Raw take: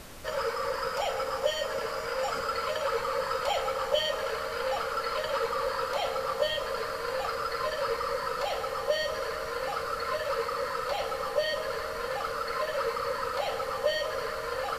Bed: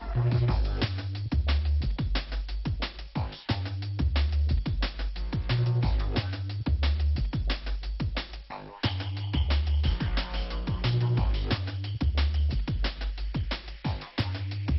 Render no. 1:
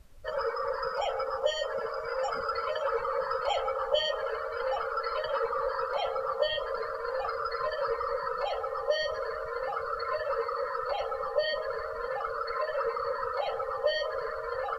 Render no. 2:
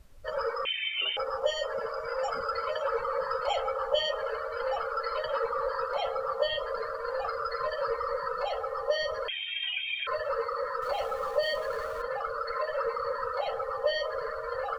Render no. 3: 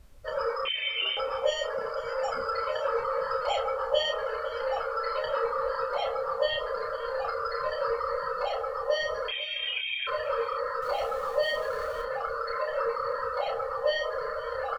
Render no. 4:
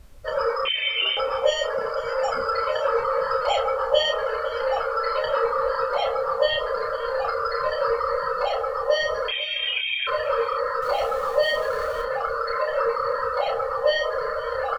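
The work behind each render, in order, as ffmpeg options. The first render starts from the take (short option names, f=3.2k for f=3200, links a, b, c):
-af "afftdn=nr=20:nf=-35"
-filter_complex "[0:a]asettb=1/sr,asplit=3[a][b][c];[a]atrim=end=0.654[d];[b]atrim=start=0.65:end=1.17,asetpts=PTS-STARTPTS,afade=t=in:d=0.004:c=qsin,afade=t=out:st=0.516:d=0.004:c=qsin,lowpass=f=3.1k:t=q:w=0.5098,lowpass=f=3.1k:t=q:w=0.6013,lowpass=f=3.1k:t=q:w=0.9,lowpass=f=3.1k:t=q:w=2.563,afreqshift=-3600[e];[c]atrim=start=1.166[f];[d][e]acrossfade=d=0.004:c1=hsin:c2=qsin[g];[g][f]acrossfade=d=0.004:c1=qsin:c2=hsin,asettb=1/sr,asplit=3[h][i][j];[h]atrim=end=9.284[k];[i]atrim=start=9.28:end=10.07,asetpts=PTS-STARTPTS,afade=t=in:d=0.004:c=qsin,afade=t=out:st=0.786:d=0.004:c=qsin,lowpass=f=3.1k:t=q:w=0.5098,lowpass=f=3.1k:t=q:w=0.6013,lowpass=f=3.1k:t=q:w=0.9,lowpass=f=3.1k:t=q:w=2.563,afreqshift=-3700[l];[j]atrim=start=10.066[m];[k][l]acrossfade=d=0.004:c1=hsin:c2=qsin[n];[n][m]acrossfade=d=0.004:c1=qsin:c2=hsin,asettb=1/sr,asplit=3[o][p][q];[o]atrim=end=10.824[r];[p]atrim=start=10.82:end=12.02,asetpts=PTS-STARTPTS,afade=t=in:d=0.004:c=qsin,afade=t=out:st=1.196:d=0.004:c=qsin,aeval=exprs='val(0)+0.5*0.00668*sgn(val(0))':c=same[s];[q]atrim=start=12.016[t];[r][s]acrossfade=d=0.004:c1=hsin:c2=qsin[u];[u][t]acrossfade=d=0.004:c1=qsin:c2=hsin"
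-filter_complex "[0:a]asplit=2[a][b];[b]adelay=30,volume=-5dB[c];[a][c]amix=inputs=2:normalize=0,aecho=1:1:500:0.119"
-af "volume=6dB"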